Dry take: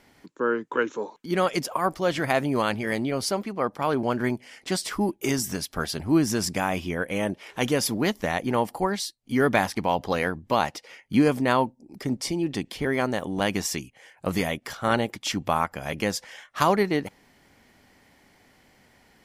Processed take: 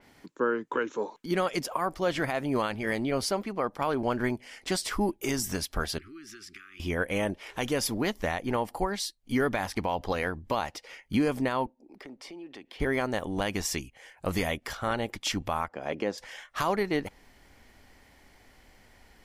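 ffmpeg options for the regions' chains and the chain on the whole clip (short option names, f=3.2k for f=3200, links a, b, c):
-filter_complex "[0:a]asettb=1/sr,asplit=3[a][b][c];[a]atrim=end=5.984[d];[b]atrim=start=5.98:end=6.8,asetpts=PTS-STARTPTS,afade=t=in:d=0.004:c=qsin,afade=t=out:st=0.816:d=0.004:c=qsin,acrossover=split=400 4200:gain=0.1 1 0.2[e][f][g];[e][f][g]amix=inputs=3:normalize=0,acompressor=threshold=-42dB:ratio=6:attack=3.2:release=140:knee=1:detection=peak,asuperstop=centerf=690:order=20:qfactor=0.88[h];[c]atrim=start=6.796[i];[d][h]acrossfade=d=0.004:c1=hsin:c2=qsin[j];[j][i]acrossfade=d=0.004:c1=qsin:c2=hsin,asettb=1/sr,asplit=3[k][l][m];[k]atrim=end=11.664[n];[l]atrim=start=11.66:end=12.8,asetpts=PTS-STARTPTS,afade=t=in:d=0.004:c=qsin,afade=t=out:st=1.136:d=0.004:c=qsin,acrossover=split=250 3700:gain=0.0891 1 0.178[o][p][q];[o][p][q]amix=inputs=3:normalize=0,acompressor=threshold=-44dB:ratio=3:attack=3.2:release=140:knee=1:detection=peak[r];[m]atrim=start=12.796[s];[n][r]acrossfade=d=0.004:c1=hsin:c2=qsin[t];[t][s]acrossfade=d=0.004:c1=qsin:c2=hsin,asettb=1/sr,asplit=3[u][v][w];[u]atrim=end=15.684[x];[v]atrim=start=15.68:end=16.18,asetpts=PTS-STARTPTS,afade=t=in:d=0.004:c=qsin,afade=t=out:st=0.496:d=0.004:c=qsin,highpass=320,lowpass=5.5k,tiltshelf=f=760:g=7.5[y];[w]atrim=start=16.176[z];[x][y]acrossfade=d=0.004:c1=hsin:c2=qsin[aa];[aa][z]acrossfade=d=0.004:c1=qsin:c2=hsin,asubboost=boost=5.5:cutoff=59,alimiter=limit=-17dB:level=0:latency=1:release=221,adynamicequalizer=threshold=0.00631:dfrequency=4100:dqfactor=0.7:tfrequency=4100:tqfactor=0.7:attack=5:release=100:ratio=0.375:range=1.5:mode=cutabove:tftype=highshelf"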